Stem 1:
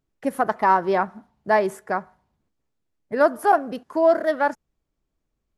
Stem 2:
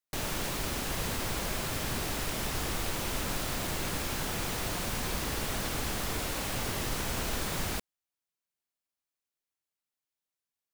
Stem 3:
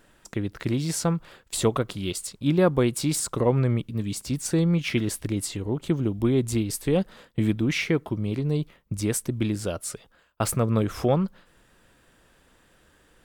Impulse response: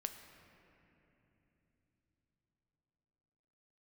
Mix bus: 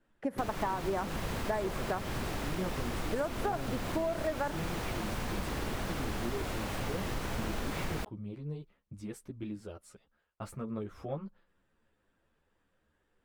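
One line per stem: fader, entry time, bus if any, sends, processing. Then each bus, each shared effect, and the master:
-3.0 dB, 0.00 s, no send, compressor, threshold -19 dBFS, peak gain reduction 8 dB
+0.5 dB, 0.25 s, no send, dry
-12.0 dB, 0.00 s, no send, ensemble effect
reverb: off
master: high shelf 3400 Hz -11.5 dB; compressor 4:1, threshold -30 dBFS, peak gain reduction 8.5 dB

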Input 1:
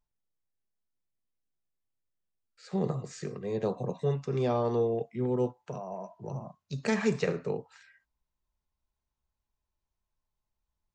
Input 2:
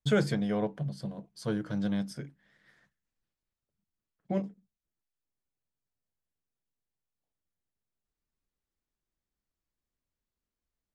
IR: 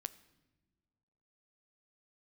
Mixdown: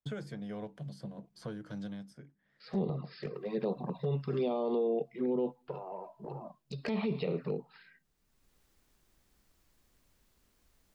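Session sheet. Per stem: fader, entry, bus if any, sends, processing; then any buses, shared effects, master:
+1.5 dB, 0.00 s, send -22.5 dB, FFT band-pass 130–5300 Hz; gate with hold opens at -49 dBFS; envelope flanger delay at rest 7.8 ms, full sweep at -26 dBFS
-11.0 dB, 0.00 s, muted 2.8–3.34, send -21.5 dB, three-band squash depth 100%; auto duck -15 dB, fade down 0.75 s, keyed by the first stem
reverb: on, pre-delay 9 ms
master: limiter -24 dBFS, peak gain reduction 9.5 dB

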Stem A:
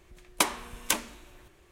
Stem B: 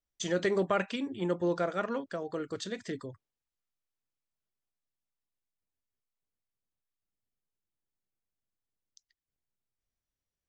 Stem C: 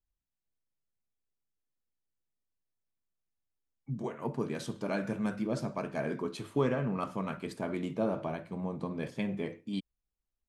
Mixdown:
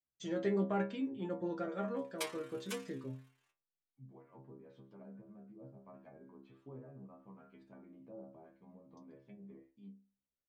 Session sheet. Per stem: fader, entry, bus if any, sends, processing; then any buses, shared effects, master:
+0.5 dB, 1.80 s, no send, HPF 1100 Hz 12 dB/oct; AM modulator 36 Hz, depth 85%
+0.5 dB, 0.00 s, no send, HPF 130 Hz; tilt -2.5 dB/oct
-12.5 dB, 0.10 s, no send, treble ducked by the level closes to 760 Hz, closed at -29.5 dBFS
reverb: off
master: high shelf 5800 Hz -4.5 dB; metallic resonator 65 Hz, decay 0.39 s, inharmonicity 0.002

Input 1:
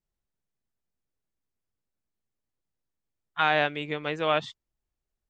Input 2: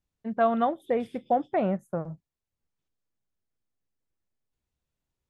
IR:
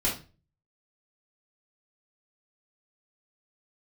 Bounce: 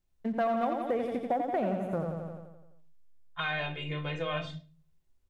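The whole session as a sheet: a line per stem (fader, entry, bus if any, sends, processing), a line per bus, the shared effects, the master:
+1.0 dB, 0.00 s, send -8.5 dB, no echo send, low shelf 220 Hz +11 dB; metallic resonator 77 Hz, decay 0.24 s, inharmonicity 0.03
+2.0 dB, 0.00 s, no send, echo send -5.5 dB, notches 60/120/180 Hz; sample leveller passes 1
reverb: on, RT60 0.35 s, pre-delay 3 ms
echo: feedback echo 86 ms, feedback 57%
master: compressor 2.5:1, threshold -32 dBFS, peak gain reduction 11.5 dB

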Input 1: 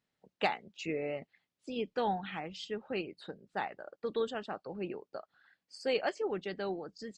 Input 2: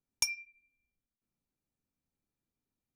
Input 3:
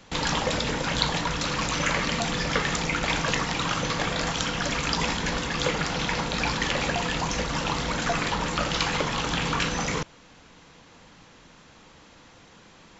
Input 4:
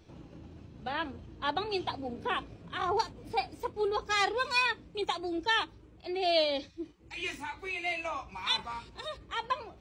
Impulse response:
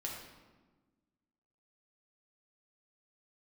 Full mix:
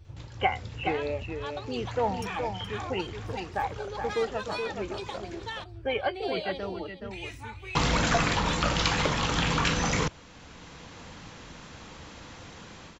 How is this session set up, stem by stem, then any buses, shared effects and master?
+2.5 dB, 0.00 s, no send, echo send -6 dB, moving spectral ripple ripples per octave 2, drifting -0.88 Hz, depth 16 dB; rippled Chebyshev low-pass 3200 Hz, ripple 3 dB
-16.5 dB, 2.00 s, no send, echo send -13.5 dB, dry
-9.0 dB, 0.05 s, muted 5.64–7.75, no send, no echo send, bell 78 Hz +6.5 dB 1.2 oct; AGC gain up to 14.5 dB; auto duck -21 dB, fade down 0.30 s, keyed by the first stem
-2.5 dB, 0.00 s, no send, echo send -12.5 dB, resonant low shelf 150 Hz +10.5 dB, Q 3; compressor, threshold -32 dBFS, peak gain reduction 9 dB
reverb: off
echo: echo 0.422 s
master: dry

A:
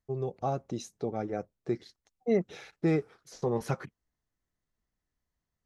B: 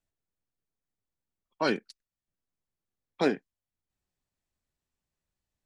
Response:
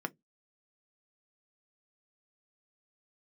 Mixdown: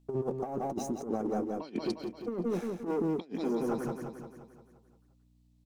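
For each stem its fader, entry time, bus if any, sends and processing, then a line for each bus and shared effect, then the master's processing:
-9.5 dB, 0.00 s, send -13.5 dB, echo send -8 dB, sample leveller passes 3; graphic EQ 125/250/1000/2000/4000 Hz -4/+9/+3/-9/-11 dB; auto duck -21 dB, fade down 0.40 s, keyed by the second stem
+0.5 dB, 0.00 s, no send, echo send -19 dB, fifteen-band EQ 250 Hz +8 dB, 1600 Hz -10 dB, 4000 Hz +4 dB; hum 60 Hz, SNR 31 dB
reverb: on, RT60 0.15 s, pre-delay 3 ms
echo: feedback echo 0.174 s, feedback 54%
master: bell 83 Hz -11.5 dB 0.52 oct; negative-ratio compressor -32 dBFS, ratio -0.5

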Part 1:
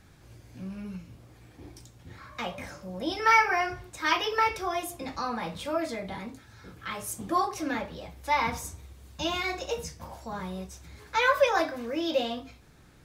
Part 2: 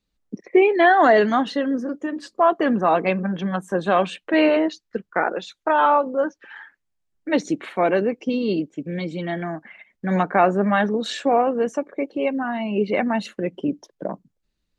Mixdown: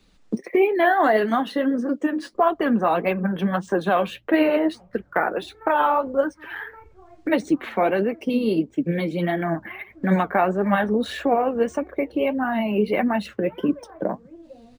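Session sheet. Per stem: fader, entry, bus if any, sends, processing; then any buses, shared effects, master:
-17.5 dB, 2.35 s, no send, LPF 2200 Hz 24 dB/oct; tilt -4 dB/oct
+3.0 dB, 0.00 s, no send, three-band squash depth 70%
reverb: off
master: flange 1.6 Hz, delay 2.3 ms, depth 7.7 ms, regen +55%; decimation joined by straight lines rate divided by 3×

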